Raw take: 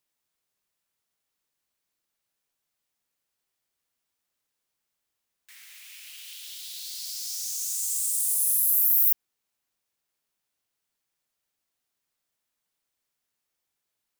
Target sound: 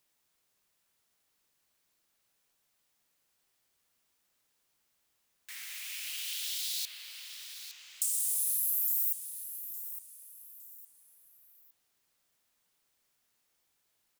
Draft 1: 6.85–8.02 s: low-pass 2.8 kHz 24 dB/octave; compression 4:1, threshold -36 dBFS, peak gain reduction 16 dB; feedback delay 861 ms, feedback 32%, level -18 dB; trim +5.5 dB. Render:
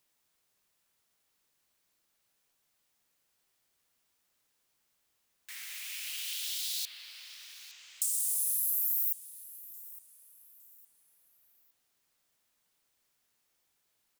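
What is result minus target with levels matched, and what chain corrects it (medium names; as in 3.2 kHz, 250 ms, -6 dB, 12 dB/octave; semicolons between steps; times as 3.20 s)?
echo-to-direct -6.5 dB
6.85–8.02 s: low-pass 2.8 kHz 24 dB/octave; compression 4:1, threshold -36 dBFS, peak gain reduction 16 dB; feedback delay 861 ms, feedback 32%, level -11.5 dB; trim +5.5 dB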